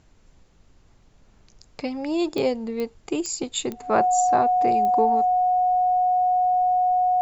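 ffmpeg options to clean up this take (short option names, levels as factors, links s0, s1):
-af "adeclick=t=4,bandreject=f=730:w=30,agate=range=0.0891:threshold=0.00398"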